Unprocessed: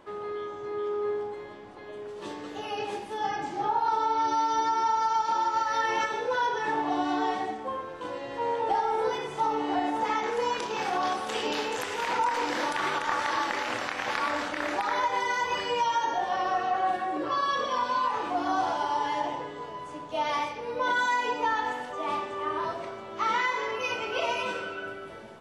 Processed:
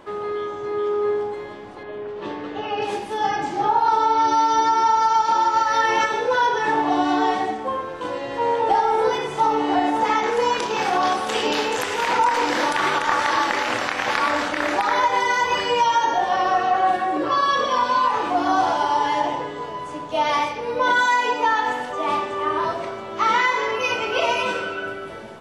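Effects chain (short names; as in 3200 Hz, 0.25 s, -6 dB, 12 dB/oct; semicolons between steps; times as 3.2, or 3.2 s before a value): 1.83–2.82 LPF 3000 Hz 12 dB/oct; 21.01–21.68 low shelf 220 Hz -7 dB; gain +8 dB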